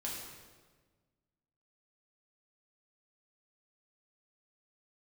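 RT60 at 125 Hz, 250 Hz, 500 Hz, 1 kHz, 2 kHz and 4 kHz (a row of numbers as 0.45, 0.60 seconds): 1.9, 1.8, 1.6, 1.3, 1.2, 1.1 seconds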